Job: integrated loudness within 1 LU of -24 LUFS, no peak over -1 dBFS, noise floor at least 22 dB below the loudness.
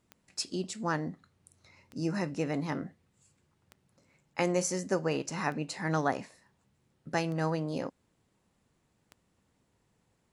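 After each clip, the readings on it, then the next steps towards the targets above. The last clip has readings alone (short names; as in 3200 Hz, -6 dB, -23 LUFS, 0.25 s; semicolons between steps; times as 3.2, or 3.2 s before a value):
clicks 6; loudness -33.5 LUFS; peak -14.5 dBFS; loudness target -24.0 LUFS
-> de-click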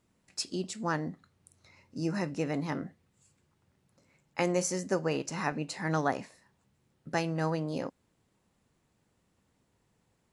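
clicks 0; loudness -33.5 LUFS; peak -14.5 dBFS; loudness target -24.0 LUFS
-> gain +9.5 dB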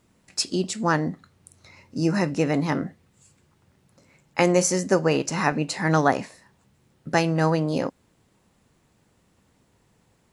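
loudness -24.0 LUFS; peak -5.0 dBFS; noise floor -65 dBFS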